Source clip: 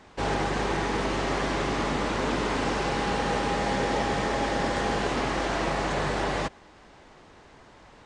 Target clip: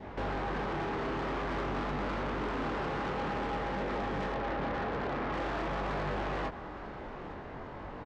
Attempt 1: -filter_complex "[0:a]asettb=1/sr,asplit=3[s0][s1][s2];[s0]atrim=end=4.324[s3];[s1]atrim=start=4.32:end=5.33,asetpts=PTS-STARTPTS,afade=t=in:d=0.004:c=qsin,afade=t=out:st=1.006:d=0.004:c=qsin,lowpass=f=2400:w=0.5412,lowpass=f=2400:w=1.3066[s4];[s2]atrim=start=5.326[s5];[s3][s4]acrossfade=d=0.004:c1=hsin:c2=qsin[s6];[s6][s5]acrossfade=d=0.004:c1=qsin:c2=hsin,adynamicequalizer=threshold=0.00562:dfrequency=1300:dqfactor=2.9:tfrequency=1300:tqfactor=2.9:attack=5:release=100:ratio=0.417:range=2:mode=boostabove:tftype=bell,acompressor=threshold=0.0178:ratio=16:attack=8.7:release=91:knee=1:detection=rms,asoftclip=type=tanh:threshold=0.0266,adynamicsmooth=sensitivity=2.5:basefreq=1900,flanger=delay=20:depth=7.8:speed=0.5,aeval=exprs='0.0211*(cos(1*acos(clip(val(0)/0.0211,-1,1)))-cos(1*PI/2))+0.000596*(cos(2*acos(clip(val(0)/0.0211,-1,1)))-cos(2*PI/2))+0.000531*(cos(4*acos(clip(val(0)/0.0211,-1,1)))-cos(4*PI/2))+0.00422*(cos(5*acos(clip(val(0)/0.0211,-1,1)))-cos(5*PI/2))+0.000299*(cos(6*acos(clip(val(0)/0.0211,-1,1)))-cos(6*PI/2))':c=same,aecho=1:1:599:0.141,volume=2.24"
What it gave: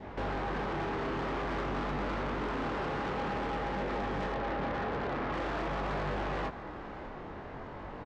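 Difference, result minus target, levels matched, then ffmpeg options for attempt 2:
echo 264 ms early
-filter_complex "[0:a]asettb=1/sr,asplit=3[s0][s1][s2];[s0]atrim=end=4.324[s3];[s1]atrim=start=4.32:end=5.33,asetpts=PTS-STARTPTS,afade=t=in:d=0.004:c=qsin,afade=t=out:st=1.006:d=0.004:c=qsin,lowpass=f=2400:w=0.5412,lowpass=f=2400:w=1.3066[s4];[s2]atrim=start=5.326[s5];[s3][s4]acrossfade=d=0.004:c1=hsin:c2=qsin[s6];[s6][s5]acrossfade=d=0.004:c1=qsin:c2=hsin,adynamicequalizer=threshold=0.00562:dfrequency=1300:dqfactor=2.9:tfrequency=1300:tqfactor=2.9:attack=5:release=100:ratio=0.417:range=2:mode=boostabove:tftype=bell,acompressor=threshold=0.0178:ratio=16:attack=8.7:release=91:knee=1:detection=rms,asoftclip=type=tanh:threshold=0.0266,adynamicsmooth=sensitivity=2.5:basefreq=1900,flanger=delay=20:depth=7.8:speed=0.5,aeval=exprs='0.0211*(cos(1*acos(clip(val(0)/0.0211,-1,1)))-cos(1*PI/2))+0.000596*(cos(2*acos(clip(val(0)/0.0211,-1,1)))-cos(2*PI/2))+0.000531*(cos(4*acos(clip(val(0)/0.0211,-1,1)))-cos(4*PI/2))+0.00422*(cos(5*acos(clip(val(0)/0.0211,-1,1)))-cos(5*PI/2))+0.000299*(cos(6*acos(clip(val(0)/0.0211,-1,1)))-cos(6*PI/2))':c=same,aecho=1:1:863:0.141,volume=2.24"

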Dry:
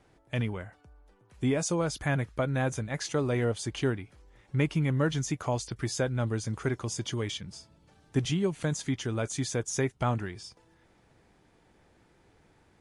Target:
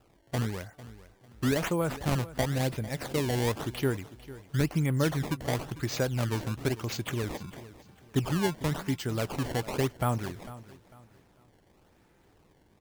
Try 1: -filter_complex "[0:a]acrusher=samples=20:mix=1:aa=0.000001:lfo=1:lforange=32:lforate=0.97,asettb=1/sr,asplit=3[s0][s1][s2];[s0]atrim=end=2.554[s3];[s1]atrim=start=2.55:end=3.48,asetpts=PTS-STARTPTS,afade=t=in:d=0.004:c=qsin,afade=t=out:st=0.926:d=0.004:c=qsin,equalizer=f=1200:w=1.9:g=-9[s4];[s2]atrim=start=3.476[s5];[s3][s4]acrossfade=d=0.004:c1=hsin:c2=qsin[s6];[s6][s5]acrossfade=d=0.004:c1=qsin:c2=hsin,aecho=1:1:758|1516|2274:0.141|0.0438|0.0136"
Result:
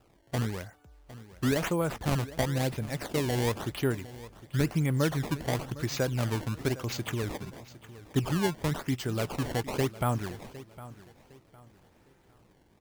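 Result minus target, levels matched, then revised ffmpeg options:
echo 309 ms late
-filter_complex "[0:a]acrusher=samples=20:mix=1:aa=0.000001:lfo=1:lforange=32:lforate=0.97,asettb=1/sr,asplit=3[s0][s1][s2];[s0]atrim=end=2.554[s3];[s1]atrim=start=2.55:end=3.48,asetpts=PTS-STARTPTS,afade=t=in:d=0.004:c=qsin,afade=t=out:st=0.926:d=0.004:c=qsin,equalizer=f=1200:w=1.9:g=-9[s4];[s2]atrim=start=3.476[s5];[s3][s4]acrossfade=d=0.004:c1=hsin:c2=qsin[s6];[s6][s5]acrossfade=d=0.004:c1=qsin:c2=hsin,aecho=1:1:449|898|1347:0.141|0.0438|0.0136"

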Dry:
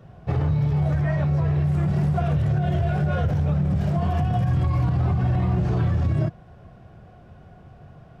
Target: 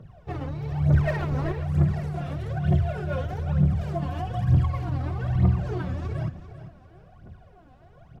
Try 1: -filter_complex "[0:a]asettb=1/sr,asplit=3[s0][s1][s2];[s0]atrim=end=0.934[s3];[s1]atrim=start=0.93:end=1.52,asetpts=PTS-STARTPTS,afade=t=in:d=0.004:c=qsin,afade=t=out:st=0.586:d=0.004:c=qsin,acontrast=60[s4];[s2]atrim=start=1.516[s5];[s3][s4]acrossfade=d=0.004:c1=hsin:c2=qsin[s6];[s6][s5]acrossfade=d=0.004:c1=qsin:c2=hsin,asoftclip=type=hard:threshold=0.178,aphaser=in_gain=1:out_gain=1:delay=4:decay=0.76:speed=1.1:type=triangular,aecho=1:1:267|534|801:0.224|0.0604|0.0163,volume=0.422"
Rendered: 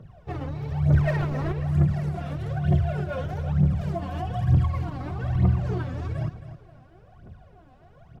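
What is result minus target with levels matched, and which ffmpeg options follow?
echo 127 ms early
-filter_complex "[0:a]asettb=1/sr,asplit=3[s0][s1][s2];[s0]atrim=end=0.934[s3];[s1]atrim=start=0.93:end=1.52,asetpts=PTS-STARTPTS,afade=t=in:d=0.004:c=qsin,afade=t=out:st=0.586:d=0.004:c=qsin,acontrast=60[s4];[s2]atrim=start=1.516[s5];[s3][s4]acrossfade=d=0.004:c1=hsin:c2=qsin[s6];[s6][s5]acrossfade=d=0.004:c1=qsin:c2=hsin,asoftclip=type=hard:threshold=0.178,aphaser=in_gain=1:out_gain=1:delay=4:decay=0.76:speed=1.1:type=triangular,aecho=1:1:394|788|1182:0.224|0.0604|0.0163,volume=0.422"

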